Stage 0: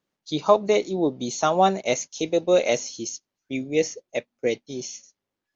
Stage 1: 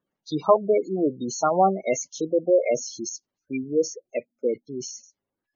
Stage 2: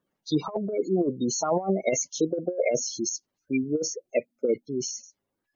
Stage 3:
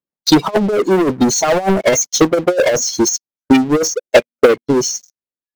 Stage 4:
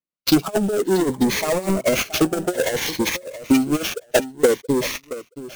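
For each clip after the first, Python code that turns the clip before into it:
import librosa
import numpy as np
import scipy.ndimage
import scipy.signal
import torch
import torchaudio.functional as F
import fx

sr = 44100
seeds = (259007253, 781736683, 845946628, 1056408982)

y1 = fx.spec_gate(x, sr, threshold_db=-15, keep='strong')
y2 = fx.over_compress(y1, sr, threshold_db=-23.0, ratio=-0.5)
y3 = fx.leveller(y2, sr, passes=5)
y3 = fx.transient(y3, sr, attack_db=7, sustain_db=-5)
y3 = fx.upward_expand(y3, sr, threshold_db=-27.0, expansion=1.5)
y3 = F.gain(torch.from_numpy(y3), 3.0).numpy()
y4 = fx.sample_hold(y3, sr, seeds[0], rate_hz=8700.0, jitter_pct=20)
y4 = fx.echo_feedback(y4, sr, ms=675, feedback_pct=16, wet_db=-15)
y4 = fx.notch_cascade(y4, sr, direction='rising', hz=0.59)
y4 = F.gain(torch.from_numpy(y4), -5.0).numpy()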